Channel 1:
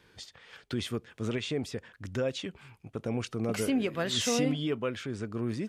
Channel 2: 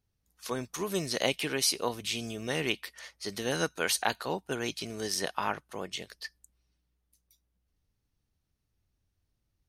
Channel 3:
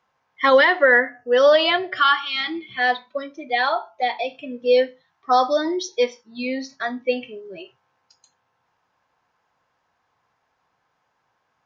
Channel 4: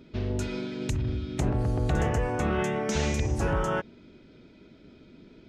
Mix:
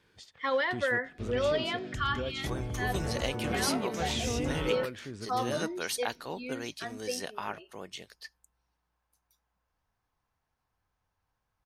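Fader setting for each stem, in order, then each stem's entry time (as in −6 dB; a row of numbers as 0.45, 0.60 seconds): −6.0, −5.5, −14.5, −9.5 decibels; 0.00, 2.00, 0.00, 1.05 seconds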